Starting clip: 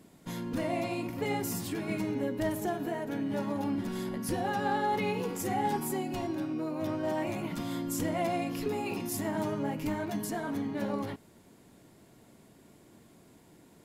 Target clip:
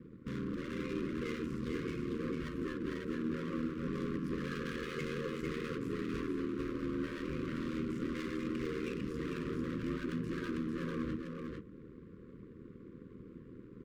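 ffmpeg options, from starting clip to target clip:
ffmpeg -i in.wav -filter_complex "[0:a]bandreject=frequency=60:width_type=h:width=6,bandreject=frequency=120:width_type=h:width=6,bandreject=frequency=180:width_type=h:width=6,asplit=2[link_01][link_02];[link_02]acompressor=threshold=-41dB:ratio=6,volume=-0.5dB[link_03];[link_01][link_03]amix=inputs=2:normalize=0,alimiter=level_in=1.5dB:limit=-24dB:level=0:latency=1:release=442,volume=-1.5dB,adynamicsmooth=sensitivity=7.5:basefreq=880,volume=36dB,asoftclip=hard,volume=-36dB,aeval=exprs='val(0)*sin(2*PI*40*n/s)':channel_layout=same,asuperstop=centerf=750:order=12:qfactor=1.4,aecho=1:1:449:0.631,volume=3.5dB" out.wav

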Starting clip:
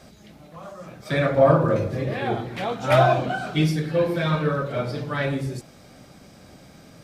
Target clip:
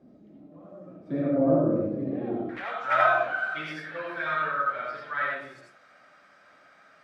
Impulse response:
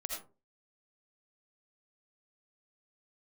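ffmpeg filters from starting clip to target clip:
-filter_complex "[0:a]asetnsamples=nb_out_samples=441:pad=0,asendcmd='2.49 bandpass f 1500',bandpass=frequency=280:width_type=q:width=3:csg=0[link_01];[1:a]atrim=start_sample=2205,afade=type=out:start_time=0.21:duration=0.01,atrim=end_sample=9702,asetrate=43218,aresample=44100[link_02];[link_01][link_02]afir=irnorm=-1:irlink=0,volume=4.5dB"

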